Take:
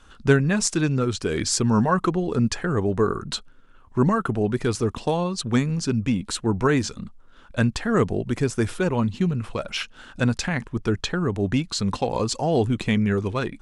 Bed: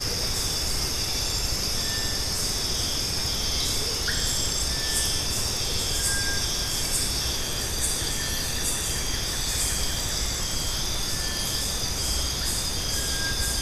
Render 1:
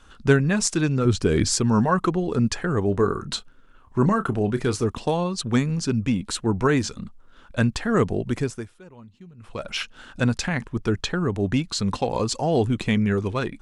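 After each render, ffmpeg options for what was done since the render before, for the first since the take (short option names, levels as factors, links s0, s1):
-filter_complex "[0:a]asettb=1/sr,asplit=3[s0][s1][s2];[s0]atrim=end=1.054[s3];[s1]atrim=start=1.05:end=1.55,asetpts=PTS-STARTPTS,afade=t=in:d=0.004:c=qsin,afade=t=out:st=0.496:d=0.004:c=qsin,lowshelf=f=380:g=8.5[s4];[s2]atrim=start=1.546[s5];[s3][s4]acrossfade=d=0.004:c1=hsin:c2=qsin[s6];[s6][s5]acrossfade=d=0.004:c1=qsin:c2=hsin,asettb=1/sr,asplit=3[s7][s8][s9];[s7]atrim=end=2.844[s10];[s8]atrim=start=2.84:end=4.85,asetpts=PTS-STARTPTS,afade=t=in:d=0.004:c=qsin,afade=t=out:st=2.006:d=0.004:c=qsin,asplit=2[s11][s12];[s12]adelay=30,volume=0.237[s13];[s11][s13]amix=inputs=2:normalize=0,atrim=end_sample=88641[s14];[s9]atrim=start=4.846[s15];[s10][s14]acrossfade=d=0.004:c1=hsin:c2=qsin[s16];[s16][s15]acrossfade=d=0.004:c1=qsin:c2=hsin,asplit=3[s17][s18][s19];[s17]atrim=end=8.69,asetpts=PTS-STARTPTS,afade=t=out:st=8.35:d=0.34:silence=0.0707946[s20];[s18]atrim=start=8.69:end=9.37,asetpts=PTS-STARTPTS,volume=0.0708[s21];[s19]atrim=start=9.37,asetpts=PTS-STARTPTS,afade=t=in:d=0.34:silence=0.0707946[s22];[s20][s21][s22]concat=n=3:v=0:a=1"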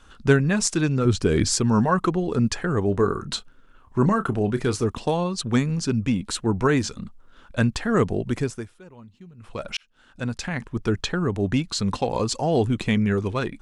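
-filter_complex "[0:a]asplit=2[s0][s1];[s0]atrim=end=9.77,asetpts=PTS-STARTPTS,afade=t=out:st=9.766:d=0.004:c=hsin[s2];[s1]atrim=start=9.77,asetpts=PTS-STARTPTS,afade=t=in:d=1.08[s3];[s2][s3]concat=n=2:v=0:a=1"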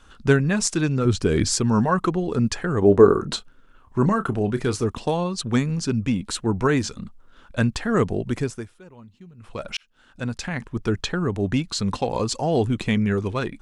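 -filter_complex "[0:a]asettb=1/sr,asplit=3[s0][s1][s2];[s0]atrim=end=2.824[s3];[s1]atrim=start=2.82:end=3.36,asetpts=PTS-STARTPTS,afade=t=in:d=0.004:c=qsin,afade=t=out:st=0.536:d=0.004:c=qsin,equalizer=f=440:t=o:w=2.4:g=9.5[s4];[s2]atrim=start=3.356[s5];[s3][s4]acrossfade=d=0.004:c1=hsin:c2=qsin[s6];[s6][s5]acrossfade=d=0.004:c1=qsin:c2=hsin"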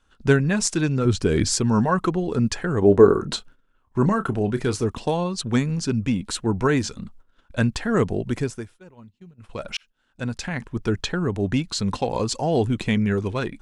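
-af "bandreject=f=1200:w=16,agate=range=0.224:threshold=0.00562:ratio=16:detection=peak"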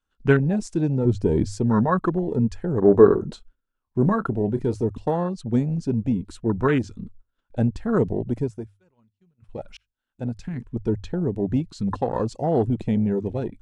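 -af "afwtdn=0.0562,bandreject=f=50:t=h:w=6,bandreject=f=100:t=h:w=6"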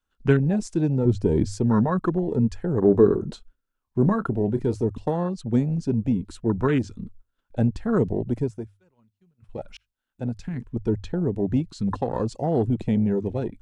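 -filter_complex "[0:a]acrossover=split=410|3000[s0][s1][s2];[s1]acompressor=threshold=0.0562:ratio=6[s3];[s0][s3][s2]amix=inputs=3:normalize=0"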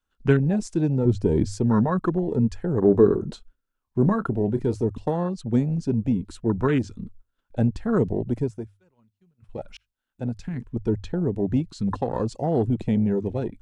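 -af anull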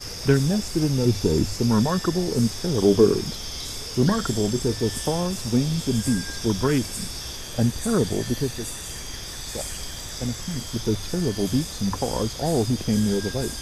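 -filter_complex "[1:a]volume=0.447[s0];[0:a][s0]amix=inputs=2:normalize=0"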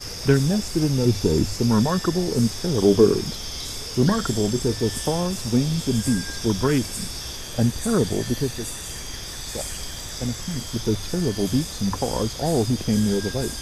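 -af "volume=1.12"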